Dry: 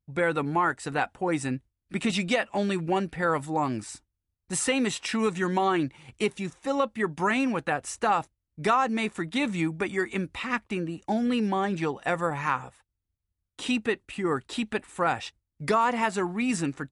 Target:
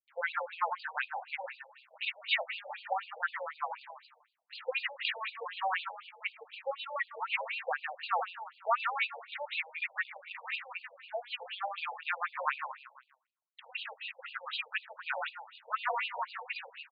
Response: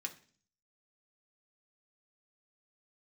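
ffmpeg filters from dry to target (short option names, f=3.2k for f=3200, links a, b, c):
-filter_complex "[0:a]adynamicequalizer=threshold=0.00631:dfrequency=2700:dqfactor=1.1:tfrequency=2700:tqfactor=1.1:attack=5:release=100:ratio=0.375:range=2.5:mode=boostabove:tftype=bell,asplit=5[a][b][c][d][e];[b]adelay=155,afreqshift=32,volume=-7dB[f];[c]adelay=310,afreqshift=64,volume=-16.9dB[g];[d]adelay=465,afreqshift=96,volume=-26.8dB[h];[e]adelay=620,afreqshift=128,volume=-36.7dB[i];[a][f][g][h][i]amix=inputs=5:normalize=0,acrusher=bits=9:dc=4:mix=0:aa=0.000001,asplit=2[j][k];[1:a]atrim=start_sample=2205,asetrate=26019,aresample=44100[l];[k][l]afir=irnorm=-1:irlink=0,volume=-13dB[m];[j][m]amix=inputs=2:normalize=0,afftfilt=real='re*between(b*sr/1024,640*pow(3500/640,0.5+0.5*sin(2*PI*4*pts/sr))/1.41,640*pow(3500/640,0.5+0.5*sin(2*PI*4*pts/sr))*1.41)':imag='im*between(b*sr/1024,640*pow(3500/640,0.5+0.5*sin(2*PI*4*pts/sr))/1.41,640*pow(3500/640,0.5+0.5*sin(2*PI*4*pts/sr))*1.41)':win_size=1024:overlap=0.75,volume=-4dB"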